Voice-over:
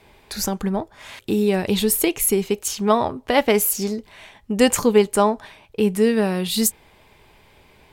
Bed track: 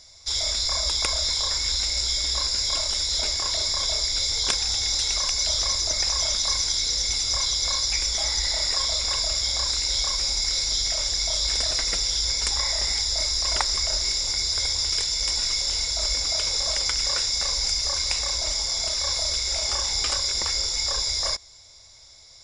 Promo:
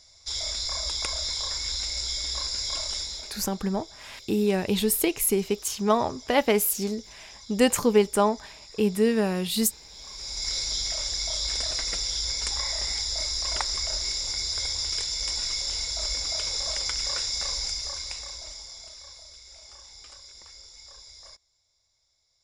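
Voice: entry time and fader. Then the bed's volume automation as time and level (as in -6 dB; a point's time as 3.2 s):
3.00 s, -4.5 dB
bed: 2.98 s -5.5 dB
3.5 s -23.5 dB
9.89 s -23.5 dB
10.48 s -4.5 dB
17.54 s -4.5 dB
19.29 s -22.5 dB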